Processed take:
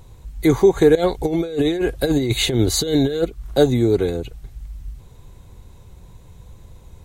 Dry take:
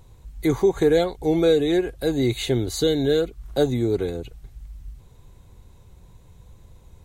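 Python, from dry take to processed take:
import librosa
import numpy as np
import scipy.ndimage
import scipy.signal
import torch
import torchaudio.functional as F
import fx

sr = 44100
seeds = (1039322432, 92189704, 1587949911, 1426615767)

y = fx.over_compress(x, sr, threshold_db=-23.0, ratio=-0.5, at=(0.95, 3.25))
y = y * librosa.db_to_amplitude(5.5)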